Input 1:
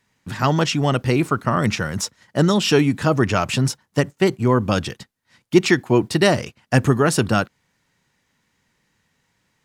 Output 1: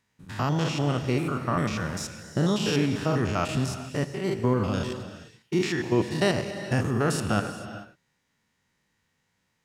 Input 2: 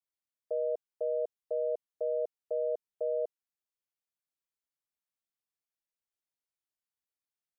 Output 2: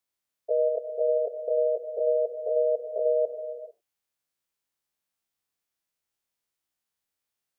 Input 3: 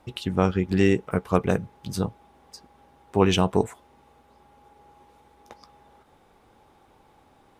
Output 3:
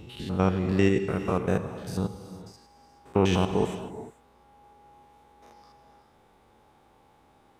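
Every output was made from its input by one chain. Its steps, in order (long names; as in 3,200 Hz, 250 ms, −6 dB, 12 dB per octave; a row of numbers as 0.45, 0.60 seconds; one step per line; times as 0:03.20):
spectrum averaged block by block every 100 ms
reverb whose tail is shaped and stops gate 470 ms flat, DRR 8.5 dB
loudness normalisation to −27 LKFS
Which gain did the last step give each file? −5.5, +9.0, −1.5 decibels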